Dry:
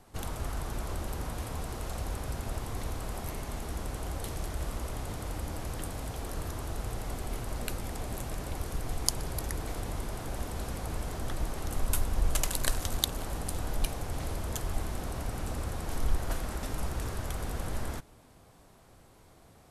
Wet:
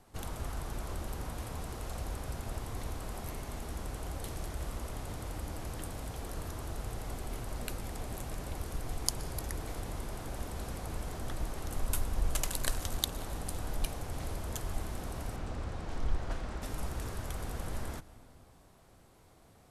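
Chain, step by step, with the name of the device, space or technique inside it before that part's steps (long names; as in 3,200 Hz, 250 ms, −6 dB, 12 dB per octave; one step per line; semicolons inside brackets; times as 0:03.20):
0:15.36–0:16.62: high-frequency loss of the air 87 metres
compressed reverb return (on a send at −13 dB: convolution reverb RT60 1.5 s, pre-delay 108 ms + downward compressor, threshold −34 dBFS, peak gain reduction 15.5 dB)
on the sum: level −3.5 dB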